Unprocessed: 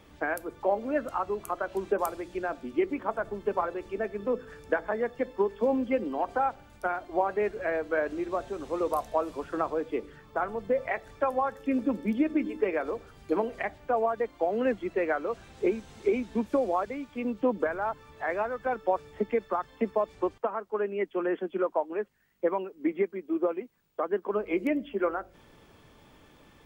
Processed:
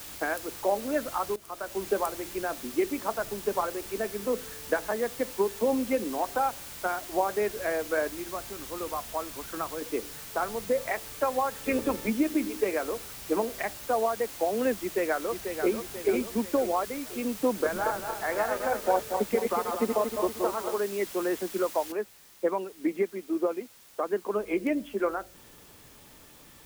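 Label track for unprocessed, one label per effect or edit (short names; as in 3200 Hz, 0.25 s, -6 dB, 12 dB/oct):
1.360000	1.860000	fade in, from -16 dB
8.090000	9.820000	bell 490 Hz -8 dB 1.8 oct
11.530000	12.080000	spectral limiter ceiling under each frame's peak by 15 dB
14.750000	15.730000	echo throw 0.49 s, feedback 50%, level -7 dB
17.530000	20.780000	regenerating reverse delay 0.117 s, feedback 64%, level -4 dB
21.920000	21.920000	noise floor step -43 dB -55 dB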